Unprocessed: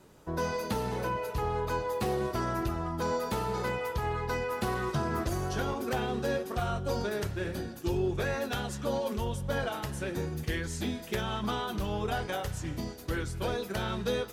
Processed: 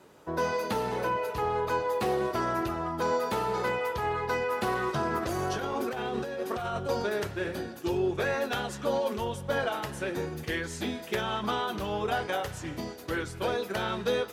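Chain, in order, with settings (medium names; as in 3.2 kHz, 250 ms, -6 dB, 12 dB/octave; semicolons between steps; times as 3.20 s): high-pass 70 Hz; tone controls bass -8 dB, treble -5 dB; 5.18–6.89 s: compressor with a negative ratio -36 dBFS, ratio -1; trim +4 dB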